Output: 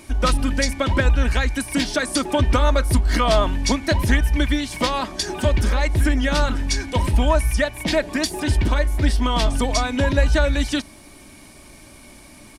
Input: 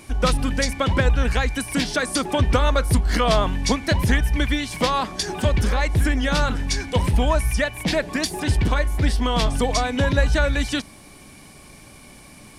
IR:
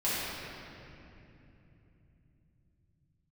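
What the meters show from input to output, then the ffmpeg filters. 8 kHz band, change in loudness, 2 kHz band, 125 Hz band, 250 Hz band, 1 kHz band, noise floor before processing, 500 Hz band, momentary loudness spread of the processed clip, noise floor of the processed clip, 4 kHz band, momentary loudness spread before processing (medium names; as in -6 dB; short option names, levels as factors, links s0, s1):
+1.0 dB, +1.0 dB, +0.5 dB, +0.5 dB, +1.5 dB, 0.0 dB, -45 dBFS, +1.0 dB, 4 LU, -45 dBFS, +0.5 dB, 4 LU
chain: -af "aecho=1:1:3.2:0.41"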